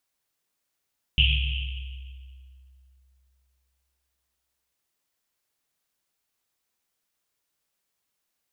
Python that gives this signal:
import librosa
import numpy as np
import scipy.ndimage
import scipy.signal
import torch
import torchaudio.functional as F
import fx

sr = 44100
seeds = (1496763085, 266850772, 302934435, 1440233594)

y = fx.risset_drum(sr, seeds[0], length_s=3.55, hz=65.0, decay_s=2.96, noise_hz=2900.0, noise_width_hz=740.0, noise_pct=40)